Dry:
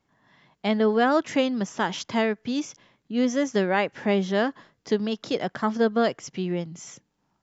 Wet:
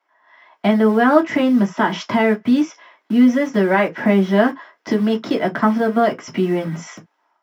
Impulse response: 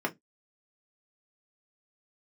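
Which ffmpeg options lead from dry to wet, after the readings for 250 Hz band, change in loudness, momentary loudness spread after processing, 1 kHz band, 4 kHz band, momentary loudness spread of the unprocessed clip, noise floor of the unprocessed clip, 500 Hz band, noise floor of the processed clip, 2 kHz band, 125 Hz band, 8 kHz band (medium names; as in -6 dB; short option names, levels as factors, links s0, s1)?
+10.0 dB, +8.0 dB, 8 LU, +7.5 dB, +2.0 dB, 10 LU, -74 dBFS, +6.0 dB, -68 dBFS, +7.5 dB, +9.0 dB, no reading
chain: -filter_complex "[0:a]lowshelf=f=180:g=12,asplit=2[s0][s1];[s1]acompressor=threshold=0.0251:ratio=10,volume=1.41[s2];[s0][s2]amix=inputs=2:normalize=0,alimiter=limit=0.251:level=0:latency=1:release=178,acrossover=split=610[s3][s4];[s3]acrusher=bits=5:mix=0:aa=0.000001[s5];[s4]dynaudnorm=f=310:g=3:m=2.24[s6];[s5][s6]amix=inputs=2:normalize=0[s7];[1:a]atrim=start_sample=2205,atrim=end_sample=3528[s8];[s7][s8]afir=irnorm=-1:irlink=0,volume=0.422"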